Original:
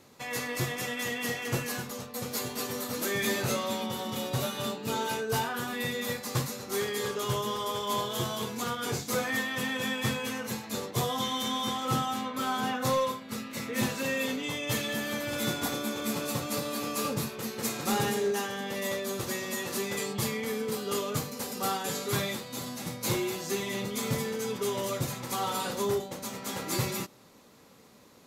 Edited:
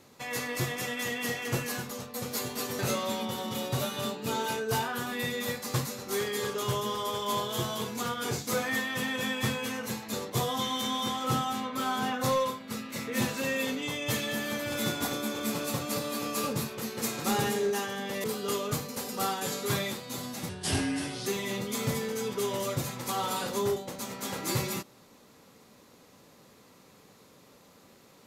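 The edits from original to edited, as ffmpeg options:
ffmpeg -i in.wav -filter_complex "[0:a]asplit=5[link_01][link_02][link_03][link_04][link_05];[link_01]atrim=end=2.792[link_06];[link_02]atrim=start=3.398:end=18.852[link_07];[link_03]atrim=start=20.668:end=22.924[link_08];[link_04]atrim=start=22.92:end=23.5,asetpts=PTS-STARTPTS,asetrate=33075,aresample=44100[link_09];[link_05]atrim=start=23.496[link_10];[link_06][link_07]acrossfade=duration=0.004:curve1=hsin:curve2=hsin[link_11];[link_11][link_08]acrossfade=duration=0.004:curve1=hsin:curve2=hsin[link_12];[link_12][link_09]acrossfade=duration=0.004:curve1=hsin:curve2=hsin[link_13];[link_13][link_10]acrossfade=duration=0.004:curve1=hsin:curve2=hsin" out.wav

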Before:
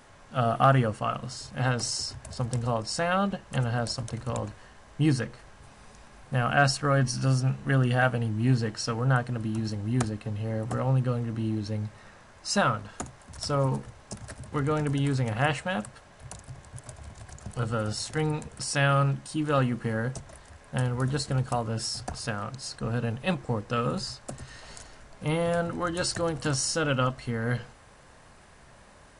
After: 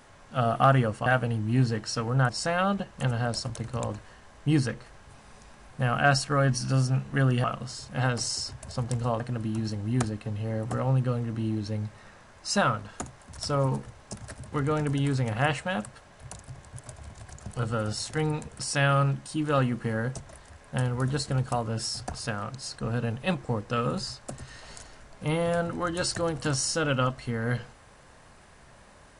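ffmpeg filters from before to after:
ffmpeg -i in.wav -filter_complex "[0:a]asplit=5[link_01][link_02][link_03][link_04][link_05];[link_01]atrim=end=1.062[link_06];[link_02]atrim=start=7.968:end=9.202[link_07];[link_03]atrim=start=2.818:end=7.972[link_08];[link_04]atrim=start=1.058:end=2.822[link_09];[link_05]atrim=start=9.198[link_10];[link_06][link_07]acrossfade=duration=0.004:curve1=hsin:curve2=hsin[link_11];[link_11][link_08]acrossfade=duration=0.004:curve1=hsin:curve2=hsin[link_12];[link_12][link_09]acrossfade=duration=0.004:curve1=hsin:curve2=hsin[link_13];[link_13][link_10]acrossfade=duration=0.004:curve1=hsin:curve2=hsin" out.wav

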